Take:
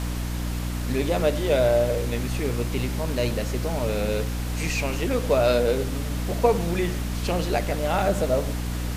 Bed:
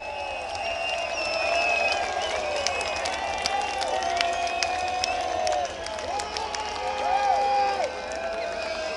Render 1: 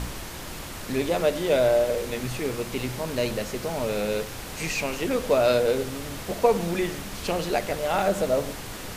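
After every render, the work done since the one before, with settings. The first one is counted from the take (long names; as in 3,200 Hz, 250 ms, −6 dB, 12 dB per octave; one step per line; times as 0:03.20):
hum removal 60 Hz, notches 5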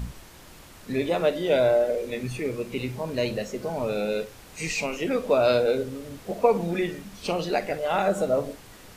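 noise reduction from a noise print 11 dB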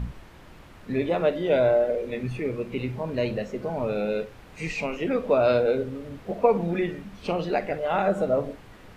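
bass and treble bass +2 dB, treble −14 dB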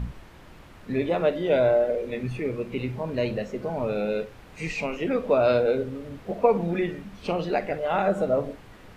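no processing that can be heard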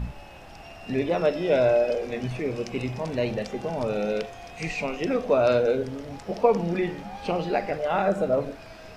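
mix in bed −16.5 dB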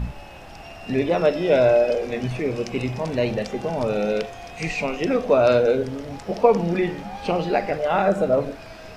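level +4 dB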